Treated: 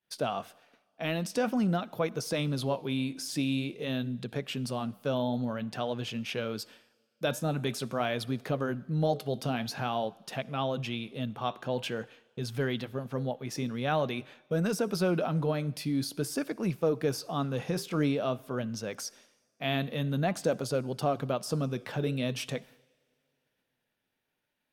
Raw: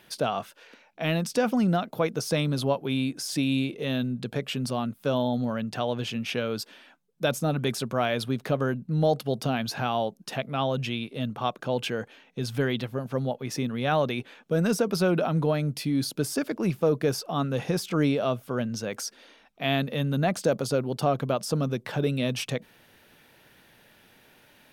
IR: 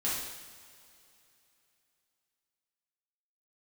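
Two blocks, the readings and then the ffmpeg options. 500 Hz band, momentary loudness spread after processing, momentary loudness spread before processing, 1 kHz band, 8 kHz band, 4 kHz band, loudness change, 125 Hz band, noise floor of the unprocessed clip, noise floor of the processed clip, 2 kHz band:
-4.5 dB, 7 LU, 7 LU, -4.5 dB, -4.5 dB, -4.5 dB, -4.5 dB, -4.5 dB, -59 dBFS, -81 dBFS, -4.5 dB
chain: -filter_complex "[0:a]flanger=delay=1:depth=8.8:regen=-80:speed=0.48:shape=triangular,agate=range=-33dB:threshold=-48dB:ratio=3:detection=peak,asplit=2[a][b];[1:a]atrim=start_sample=2205,lowshelf=f=190:g=-10,adelay=58[c];[b][c]afir=irnorm=-1:irlink=0,volume=-28dB[d];[a][d]amix=inputs=2:normalize=0"

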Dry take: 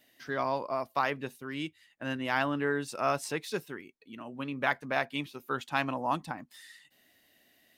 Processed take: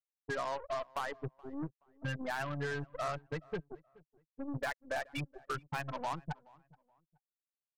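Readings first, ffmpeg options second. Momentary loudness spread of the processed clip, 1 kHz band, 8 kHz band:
8 LU, -7.5 dB, -8.0 dB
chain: -filter_complex "[0:a]afftfilt=real='re*gte(hypot(re,im),0.0794)':imag='im*gte(hypot(re,im),0.0794)':win_size=1024:overlap=0.75,lowshelf=f=190:t=q:w=3:g=8,acrossover=split=400[a][b];[a]alimiter=level_in=9.5dB:limit=-24dB:level=0:latency=1:release=61,volume=-9.5dB[c];[c][b]amix=inputs=2:normalize=0,acompressor=threshold=-40dB:ratio=3,aeval=exprs='0.0398*(cos(1*acos(clip(val(0)/0.0398,-1,1)))-cos(1*PI/2))+0.0126*(cos(6*acos(clip(val(0)/0.0398,-1,1)))-cos(6*PI/2))+0.00398*(cos(7*acos(clip(val(0)/0.0398,-1,1)))-cos(7*PI/2))+0.01*(cos(8*acos(clip(val(0)/0.0398,-1,1)))-cos(8*PI/2))':c=same,asoftclip=type=tanh:threshold=-39dB,asplit=2[d][e];[e]adelay=425,lowpass=f=1.8k:p=1,volume=-23dB,asplit=2[f][g];[g]adelay=425,lowpass=f=1.8k:p=1,volume=0.3[h];[f][h]amix=inputs=2:normalize=0[i];[d][i]amix=inputs=2:normalize=0,volume=9.5dB"

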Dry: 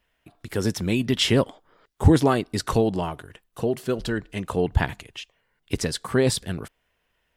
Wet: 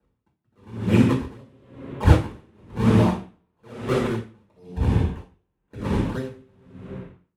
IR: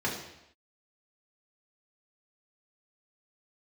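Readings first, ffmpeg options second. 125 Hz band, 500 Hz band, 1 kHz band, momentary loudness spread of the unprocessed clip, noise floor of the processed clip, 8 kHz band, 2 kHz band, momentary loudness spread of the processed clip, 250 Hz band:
+3.0 dB, -4.0 dB, -1.5 dB, 14 LU, -75 dBFS, -13.0 dB, -3.5 dB, 20 LU, +1.0 dB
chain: -filter_complex "[0:a]acrusher=samples=39:mix=1:aa=0.000001:lfo=1:lforange=62.4:lforate=1.9[a];[1:a]atrim=start_sample=2205,asetrate=23814,aresample=44100[b];[a][b]afir=irnorm=-1:irlink=0,aeval=exprs='val(0)*pow(10,-37*(0.5-0.5*cos(2*PI*1*n/s))/20)':c=same,volume=-8.5dB"

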